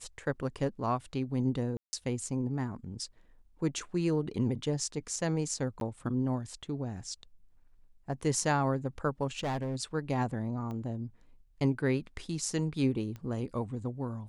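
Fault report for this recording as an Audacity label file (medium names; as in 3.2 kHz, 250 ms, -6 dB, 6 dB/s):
1.770000	1.930000	dropout 160 ms
5.800000	5.810000	dropout 12 ms
9.380000	9.760000	clipped -29.5 dBFS
10.710000	10.710000	pop -29 dBFS
13.160000	13.160000	pop -30 dBFS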